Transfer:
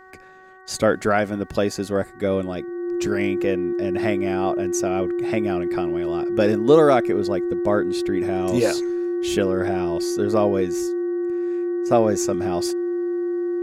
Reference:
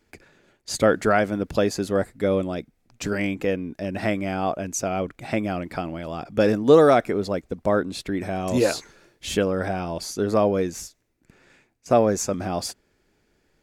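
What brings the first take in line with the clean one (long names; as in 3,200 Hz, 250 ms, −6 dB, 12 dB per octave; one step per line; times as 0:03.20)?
hum removal 375.7 Hz, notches 5
notch filter 350 Hz, Q 30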